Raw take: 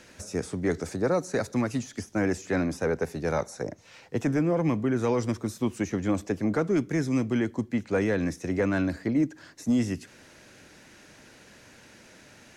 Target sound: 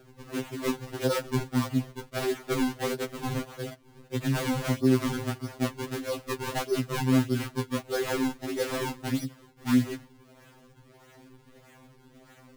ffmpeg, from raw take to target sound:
ffmpeg -i in.wav -af "acrusher=samples=41:mix=1:aa=0.000001:lfo=1:lforange=65.6:lforate=1.6,afftfilt=real='re*2.45*eq(mod(b,6),0)':imag='im*2.45*eq(mod(b,6),0)':win_size=2048:overlap=0.75" out.wav

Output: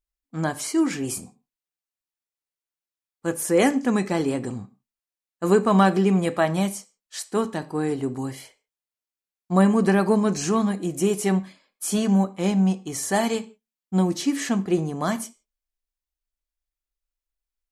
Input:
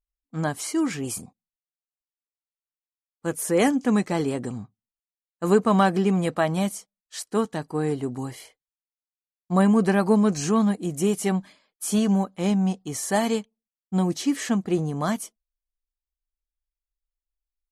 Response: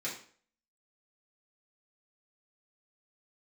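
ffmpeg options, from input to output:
-filter_complex "[0:a]asplit=2[link_01][link_02];[1:a]atrim=start_sample=2205,afade=type=out:start_time=0.24:duration=0.01,atrim=end_sample=11025,asetrate=48510,aresample=44100[link_03];[link_02][link_03]afir=irnorm=-1:irlink=0,volume=-11dB[link_04];[link_01][link_04]amix=inputs=2:normalize=0"

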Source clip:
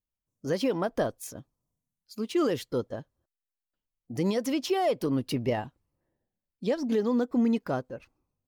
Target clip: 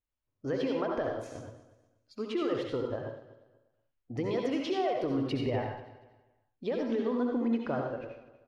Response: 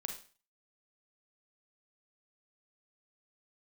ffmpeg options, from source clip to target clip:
-filter_complex "[0:a]lowpass=2900,equalizer=frequency=190:width=3.5:gain=-13,acompressor=threshold=-30dB:ratio=6,aecho=1:1:241|482|723:0.15|0.0419|0.0117[link_01];[1:a]atrim=start_sample=2205,afade=type=out:start_time=0.16:duration=0.01,atrim=end_sample=7497,asetrate=24255,aresample=44100[link_02];[link_01][link_02]afir=irnorm=-1:irlink=0"

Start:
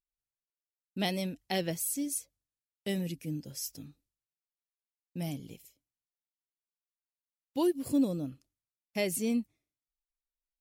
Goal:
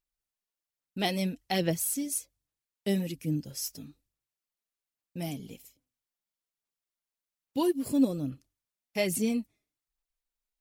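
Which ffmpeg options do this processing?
ffmpeg -i in.wav -filter_complex "[0:a]asplit=3[link_01][link_02][link_03];[link_01]afade=type=out:start_time=5.44:duration=0.02[link_04];[link_02]bandreject=frequency=253.2:width_type=h:width=4,bandreject=frequency=506.4:width_type=h:width=4,bandreject=frequency=759.6:width_type=h:width=4,bandreject=frequency=1012.8:width_type=h:width=4,bandreject=frequency=1266:width_type=h:width=4,bandreject=frequency=1519.2:width_type=h:width=4,bandreject=frequency=1772.4:width_type=h:width=4,afade=type=in:start_time=5.44:duration=0.02,afade=type=out:start_time=7.68:duration=0.02[link_05];[link_03]afade=type=in:start_time=7.68:duration=0.02[link_06];[link_04][link_05][link_06]amix=inputs=3:normalize=0,aphaser=in_gain=1:out_gain=1:delay=4.9:decay=0.4:speed=1.2:type=sinusoidal,volume=2dB" out.wav

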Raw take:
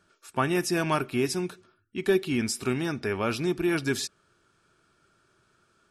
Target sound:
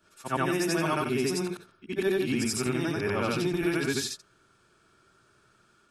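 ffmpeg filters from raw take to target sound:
ffmpeg -i in.wav -af "afftfilt=real='re':imag='-im':win_size=8192:overlap=0.75,acompressor=threshold=-32dB:ratio=2.5,volume=7dB" out.wav

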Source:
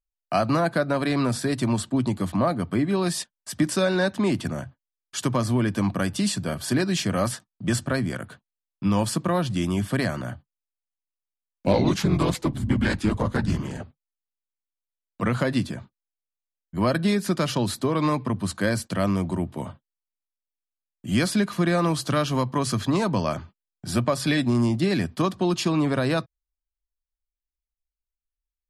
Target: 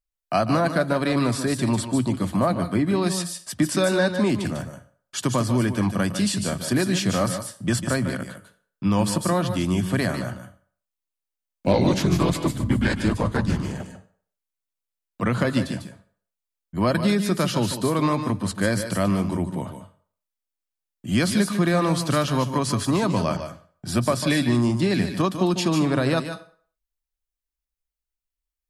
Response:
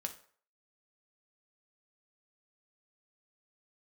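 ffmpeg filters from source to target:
-filter_complex "[0:a]asplit=2[link_01][link_02];[1:a]atrim=start_sample=2205,highshelf=frequency=6700:gain=11,adelay=148[link_03];[link_02][link_03]afir=irnorm=-1:irlink=0,volume=-8.5dB[link_04];[link_01][link_04]amix=inputs=2:normalize=0,volume=1dB"

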